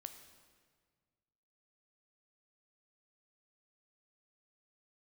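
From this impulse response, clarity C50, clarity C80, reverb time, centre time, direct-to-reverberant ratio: 9.0 dB, 10.0 dB, 1.7 s, 21 ms, 7.5 dB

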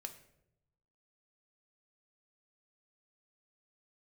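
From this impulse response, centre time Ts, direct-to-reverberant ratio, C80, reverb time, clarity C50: 11 ms, 6.0 dB, 14.5 dB, 0.80 s, 11.5 dB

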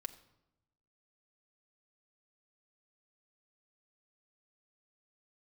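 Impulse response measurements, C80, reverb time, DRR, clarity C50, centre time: 17.0 dB, 0.90 s, 4.5 dB, 15.0 dB, 6 ms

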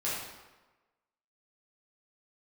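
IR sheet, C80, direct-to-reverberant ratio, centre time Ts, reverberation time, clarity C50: 3.0 dB, -9.0 dB, 74 ms, 1.2 s, -0.5 dB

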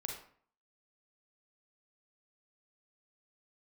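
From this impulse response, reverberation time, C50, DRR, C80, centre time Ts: 0.55 s, 4.0 dB, 1.0 dB, 8.5 dB, 33 ms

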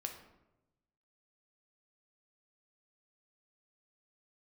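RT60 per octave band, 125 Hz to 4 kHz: 1.4 s, 1.2 s, 1.1 s, 0.85 s, 0.70 s, 0.55 s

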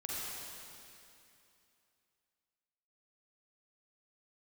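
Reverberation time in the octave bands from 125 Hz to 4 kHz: 2.7 s, 2.9 s, 2.7 s, 2.7 s, 2.7 s, 2.6 s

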